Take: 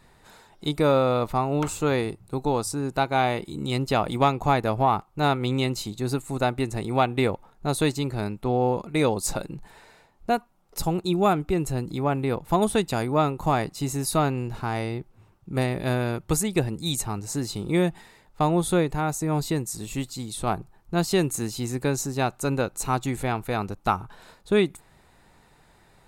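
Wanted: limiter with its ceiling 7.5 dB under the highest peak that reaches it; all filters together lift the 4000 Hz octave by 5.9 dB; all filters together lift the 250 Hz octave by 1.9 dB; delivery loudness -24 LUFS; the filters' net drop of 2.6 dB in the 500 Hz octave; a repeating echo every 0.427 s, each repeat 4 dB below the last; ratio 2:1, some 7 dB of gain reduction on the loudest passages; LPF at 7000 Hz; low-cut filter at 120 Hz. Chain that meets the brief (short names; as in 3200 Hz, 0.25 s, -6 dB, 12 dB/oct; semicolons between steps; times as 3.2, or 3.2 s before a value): HPF 120 Hz; LPF 7000 Hz; bell 250 Hz +4.5 dB; bell 500 Hz -5 dB; bell 4000 Hz +7 dB; compressor 2:1, threshold -29 dBFS; limiter -21 dBFS; feedback echo 0.427 s, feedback 63%, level -4 dB; gain +6.5 dB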